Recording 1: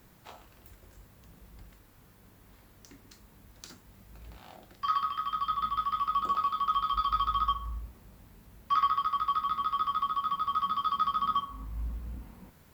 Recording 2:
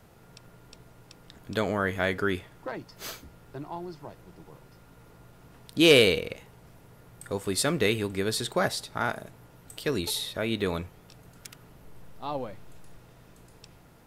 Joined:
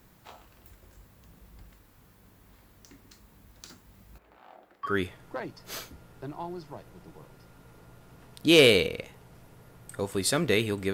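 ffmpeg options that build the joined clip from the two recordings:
-filter_complex "[0:a]asettb=1/sr,asplit=3[a][b][c];[a]atrim=end=4.184[d];[b]atrim=start=4.18:end=4.95,asetpts=PTS-STARTPTS,afade=t=in:d=0.004:c=qsin,afade=t=out:st=0.766:d=0.004:c=qsin,acrossover=split=280 2300:gain=0.1 1 0.178[e][f][g];[e][f][g]amix=inputs=3:normalize=0[h];[c]atrim=start=4.946[i];[d][h]acrossfade=d=0.004:c1=hsin:c2=qsin[j];[j][i]acrossfade=d=0.004:c1=qsin:c2=hsin,apad=whole_dur=10.93,atrim=end=10.93,atrim=end=4.95,asetpts=PTS-STARTPTS[k];[1:a]atrim=start=2.15:end=8.25,asetpts=PTS-STARTPTS[l];[k][l]acrossfade=d=0.12:c1=tri:c2=tri"

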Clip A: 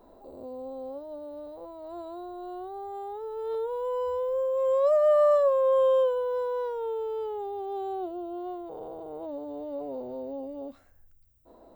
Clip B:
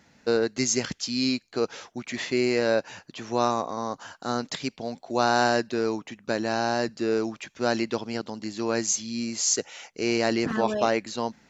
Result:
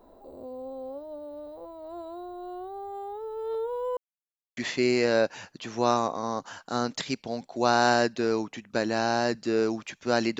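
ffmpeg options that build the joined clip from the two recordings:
-filter_complex "[0:a]apad=whole_dur=10.39,atrim=end=10.39,asplit=2[a][b];[a]atrim=end=3.97,asetpts=PTS-STARTPTS,afade=t=out:st=3.966:d=0.004:c=hsin[c];[b]atrim=start=3.97:end=4.57,asetpts=PTS-STARTPTS,volume=0[d];[1:a]atrim=start=2.11:end=7.93,asetpts=PTS-STARTPTS,afade=t=in:d=0.004:c=hsin[e];[c][d][e]concat=n=3:v=0:a=1"

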